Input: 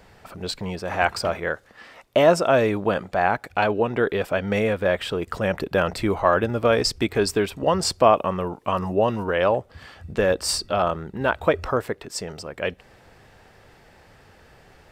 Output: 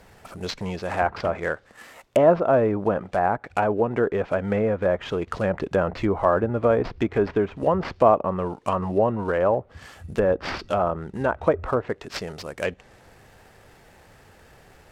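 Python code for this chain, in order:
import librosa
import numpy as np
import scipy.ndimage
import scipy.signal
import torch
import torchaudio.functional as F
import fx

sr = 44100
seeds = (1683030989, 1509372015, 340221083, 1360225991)

y = fx.sample_hold(x, sr, seeds[0], rate_hz=9900.0, jitter_pct=20)
y = fx.env_lowpass_down(y, sr, base_hz=1200.0, full_db=-18.0)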